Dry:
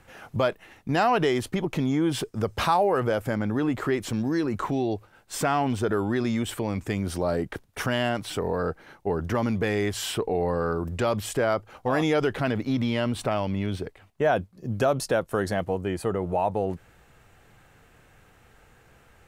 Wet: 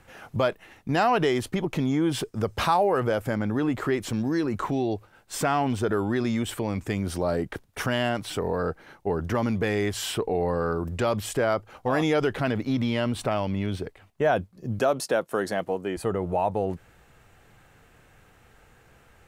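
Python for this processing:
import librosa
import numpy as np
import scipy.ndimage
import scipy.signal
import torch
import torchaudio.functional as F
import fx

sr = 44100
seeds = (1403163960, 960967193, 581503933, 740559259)

y = fx.highpass(x, sr, hz=210.0, slope=12, at=(14.79, 15.97))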